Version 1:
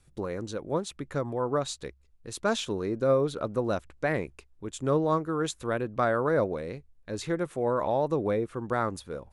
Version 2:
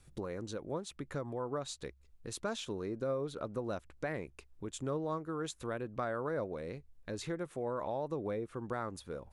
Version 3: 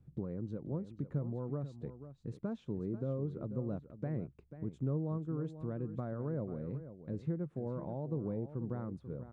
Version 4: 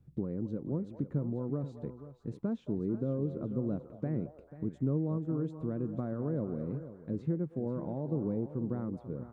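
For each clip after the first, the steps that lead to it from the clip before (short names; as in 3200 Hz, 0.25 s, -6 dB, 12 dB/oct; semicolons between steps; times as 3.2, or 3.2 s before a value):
compressor 2:1, threshold -44 dBFS, peak gain reduction 13.5 dB; gain +1 dB
band-pass 150 Hz, Q 1.5; echo 0.489 s -12 dB; gain +8 dB
dynamic EQ 270 Hz, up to +7 dB, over -51 dBFS, Q 0.98; delay with a stepping band-pass 0.221 s, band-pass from 720 Hz, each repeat 0.7 oct, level -8.5 dB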